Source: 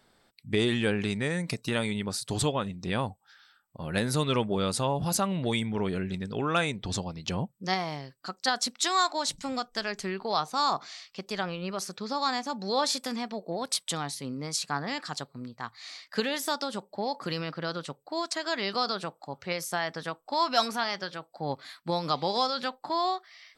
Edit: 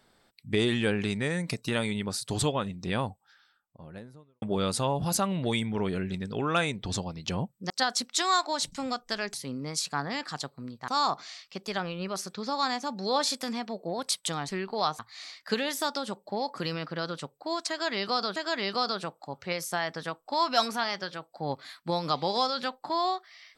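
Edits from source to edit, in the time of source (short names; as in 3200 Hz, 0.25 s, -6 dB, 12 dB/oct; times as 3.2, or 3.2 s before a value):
2.9–4.42 studio fade out
7.7–8.36 cut
10–10.51 swap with 14.11–15.65
18.36–19.02 loop, 2 plays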